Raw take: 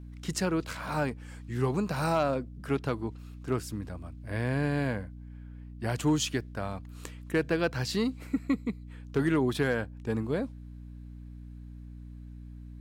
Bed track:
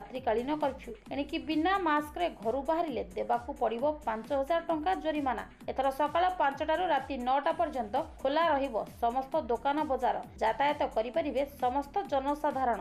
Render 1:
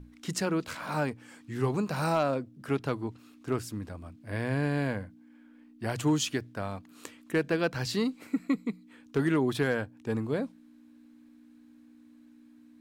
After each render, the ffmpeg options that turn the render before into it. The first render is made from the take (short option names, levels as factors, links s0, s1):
-af "bandreject=f=60:t=h:w=6,bandreject=f=120:t=h:w=6,bandreject=f=180:t=h:w=6"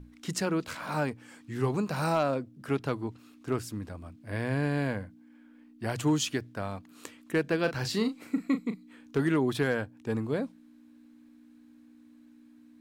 -filter_complex "[0:a]asettb=1/sr,asplit=3[s0][s1][s2];[s0]atrim=end=7.614[s3];[s1]atrim=start=7.61:end=9.17,asetpts=PTS-STARTPTS,afade=t=in:d=0.004:c=qsin,afade=t=out:st=1.556:d=0.004:c=qsin,asplit=2[s4][s5];[s5]adelay=37,volume=0.335[s6];[s4][s6]amix=inputs=2:normalize=0,atrim=end_sample=68796[s7];[s2]atrim=start=9.166[s8];[s3][s7]acrossfade=d=0.004:c1=hsin:c2=qsin[s9];[s9][s8]acrossfade=d=0.004:c1=qsin:c2=hsin"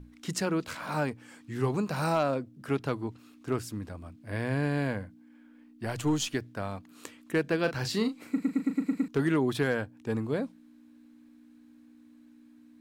-filter_complex "[0:a]asettb=1/sr,asplit=3[s0][s1][s2];[s0]atrim=end=5.854[s3];[s1]atrim=start=5.85:end=6.35,asetpts=PTS-STARTPTS,afade=t=in:d=0.004:c=qsin,afade=t=out:st=0.496:d=0.004:c=qsin,aeval=exprs='if(lt(val(0),0),0.708*val(0),val(0))':c=same[s4];[s2]atrim=start=6.346[s5];[s3][s4]acrossfade=d=0.004:c1=hsin:c2=qsin[s6];[s6][s5]acrossfade=d=0.004:c1=qsin:c2=hsin,asplit=8[s7][s8][s9][s10][s11][s12][s13][s14];[s7]atrim=end=8.422[s15];[s8]atrim=start=8.308:end=8.422[s16];[s9]atrim=start=8.308:end=8.422[s17];[s10]atrim=start=8.308:end=8.422[s18];[s11]atrim=start=8.308:end=8.422[s19];[s12]atrim=start=8.308:end=8.422[s20];[s13]atrim=start=8.308:end=8.422[s21];[s14]atrim=start=9.078[s22];[s15][s16]acrossfade=d=0.004:c1=hsin:c2=hsin[s23];[s23][s17]acrossfade=d=0.004:c1=hsin:c2=hsin[s24];[s24][s18]acrossfade=d=0.004:c1=hsin:c2=hsin[s25];[s25][s19]acrossfade=d=0.004:c1=hsin:c2=hsin[s26];[s26][s20]acrossfade=d=0.004:c1=hsin:c2=hsin[s27];[s27][s21]acrossfade=d=0.004:c1=hsin:c2=hsin[s28];[s28][s22]acrossfade=d=0.004:c1=hsin:c2=hsin"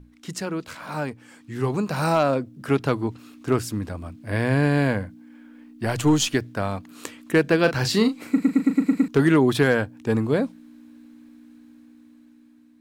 -af "dynaudnorm=f=770:g=5:m=2.82"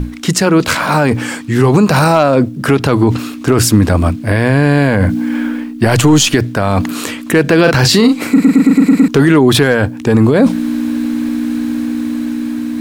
-af "areverse,acompressor=mode=upward:threshold=0.0631:ratio=2.5,areverse,alimiter=level_in=9.44:limit=0.891:release=50:level=0:latency=1"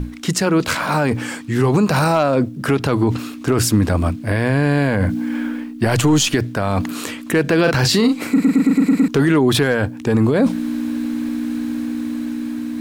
-af "volume=0.501"